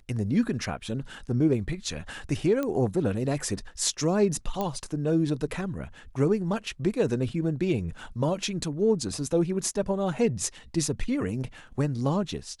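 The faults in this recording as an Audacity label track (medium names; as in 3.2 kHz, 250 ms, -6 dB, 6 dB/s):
2.630000	2.630000	pop -17 dBFS
4.610000	4.610000	pop -16 dBFS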